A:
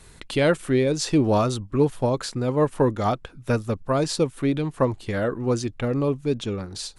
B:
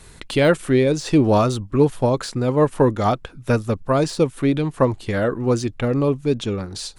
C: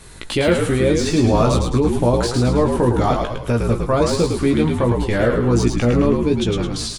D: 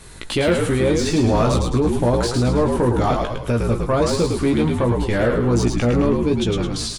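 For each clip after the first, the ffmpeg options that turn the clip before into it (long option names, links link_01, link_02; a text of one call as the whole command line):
ffmpeg -i in.wav -af "deesser=0.65,volume=4dB" out.wav
ffmpeg -i in.wav -filter_complex "[0:a]alimiter=limit=-13dB:level=0:latency=1:release=34,asplit=2[link_01][link_02];[link_02]adelay=17,volume=-5dB[link_03];[link_01][link_03]amix=inputs=2:normalize=0,asplit=7[link_04][link_05][link_06][link_07][link_08][link_09][link_10];[link_05]adelay=107,afreqshift=-59,volume=-4dB[link_11];[link_06]adelay=214,afreqshift=-118,volume=-10dB[link_12];[link_07]adelay=321,afreqshift=-177,volume=-16dB[link_13];[link_08]adelay=428,afreqshift=-236,volume=-22.1dB[link_14];[link_09]adelay=535,afreqshift=-295,volume=-28.1dB[link_15];[link_10]adelay=642,afreqshift=-354,volume=-34.1dB[link_16];[link_04][link_11][link_12][link_13][link_14][link_15][link_16]amix=inputs=7:normalize=0,volume=2.5dB" out.wav
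ffmpeg -i in.wav -af "asoftclip=type=tanh:threshold=-9dB" out.wav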